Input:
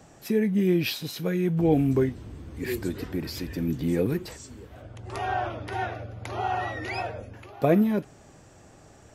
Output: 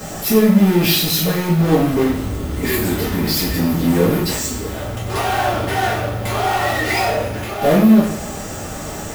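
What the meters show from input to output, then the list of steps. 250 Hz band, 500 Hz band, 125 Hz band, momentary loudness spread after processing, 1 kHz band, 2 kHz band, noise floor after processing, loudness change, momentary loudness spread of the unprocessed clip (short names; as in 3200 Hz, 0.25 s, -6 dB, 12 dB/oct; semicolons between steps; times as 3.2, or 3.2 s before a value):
+10.5 dB, +9.0 dB, +10.0 dB, 13 LU, +11.0 dB, +13.0 dB, -28 dBFS, +10.0 dB, 19 LU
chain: power-law curve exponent 0.5; two-slope reverb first 0.52 s, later 2 s, DRR -8.5 dB; whine 1300 Hz -40 dBFS; bit-crush 7-bit; high shelf 11000 Hz +10.5 dB; gain -6.5 dB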